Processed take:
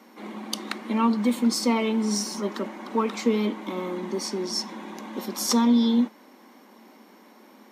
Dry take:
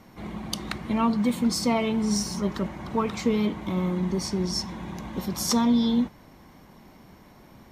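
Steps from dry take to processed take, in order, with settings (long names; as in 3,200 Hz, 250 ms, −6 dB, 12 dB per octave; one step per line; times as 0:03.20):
elliptic high-pass filter 220 Hz, stop band 40 dB
notch filter 680 Hz, Q 12
level +2 dB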